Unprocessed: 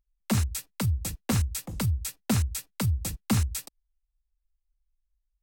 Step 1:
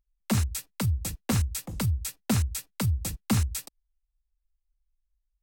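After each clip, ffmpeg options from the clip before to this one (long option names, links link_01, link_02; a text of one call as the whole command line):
ffmpeg -i in.wav -af anull out.wav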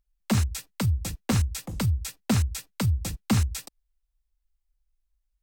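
ffmpeg -i in.wav -filter_complex "[0:a]acrossover=split=7600[link_01][link_02];[link_02]acompressor=threshold=-40dB:ratio=4:attack=1:release=60[link_03];[link_01][link_03]amix=inputs=2:normalize=0,volume=2dB" out.wav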